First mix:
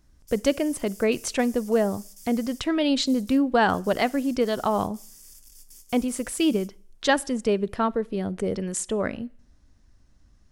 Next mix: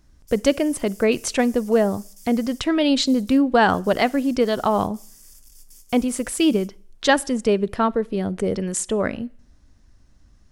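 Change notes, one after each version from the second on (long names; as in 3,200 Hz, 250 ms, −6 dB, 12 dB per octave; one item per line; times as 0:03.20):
speech +4.0 dB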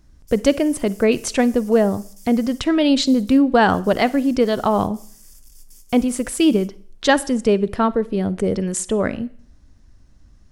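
speech: send +6.5 dB
master: add low-shelf EQ 410 Hz +3.5 dB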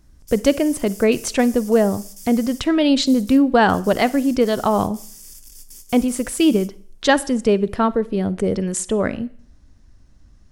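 background +7.5 dB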